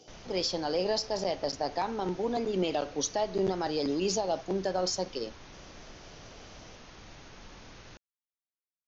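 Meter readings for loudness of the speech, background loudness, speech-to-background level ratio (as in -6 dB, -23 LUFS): -31.5 LUFS, -50.0 LUFS, 18.5 dB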